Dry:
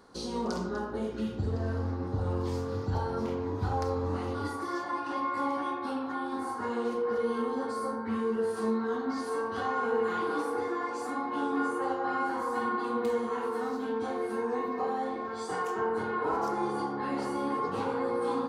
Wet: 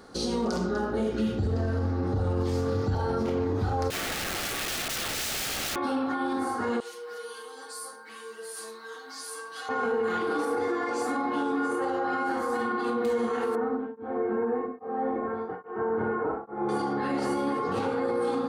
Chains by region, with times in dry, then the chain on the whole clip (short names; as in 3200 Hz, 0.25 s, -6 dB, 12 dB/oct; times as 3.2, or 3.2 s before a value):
3.9–5.76 HPF 360 Hz 6 dB/oct + wrapped overs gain 34.5 dB
6.8–9.69 differentiator + comb 6.3 ms, depth 85%
13.55–16.69 Bessel low-pass 1300 Hz, order 4 + beating tremolo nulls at 1.2 Hz
whole clip: limiter -27.5 dBFS; notch 1000 Hz, Q 5.7; gain +8 dB